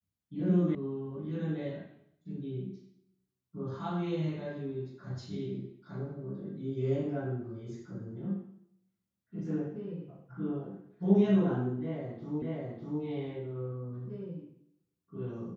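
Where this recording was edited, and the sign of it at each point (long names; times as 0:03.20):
0:00.75: cut off before it has died away
0:12.42: the same again, the last 0.6 s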